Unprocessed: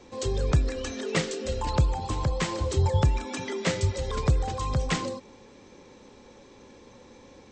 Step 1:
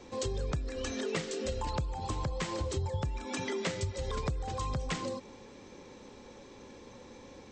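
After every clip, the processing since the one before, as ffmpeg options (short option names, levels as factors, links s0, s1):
-af "acompressor=threshold=0.0282:ratio=6"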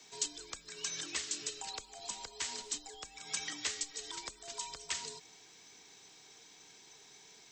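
-af "aderivative,afreqshift=-96,volume=2.37"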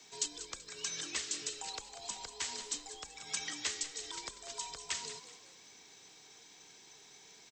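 -filter_complex "[0:a]asplit=5[s0][s1][s2][s3][s4];[s1]adelay=191,afreqshift=53,volume=0.237[s5];[s2]adelay=382,afreqshift=106,volume=0.0923[s6];[s3]adelay=573,afreqshift=159,volume=0.0359[s7];[s4]adelay=764,afreqshift=212,volume=0.0141[s8];[s0][s5][s6][s7][s8]amix=inputs=5:normalize=0"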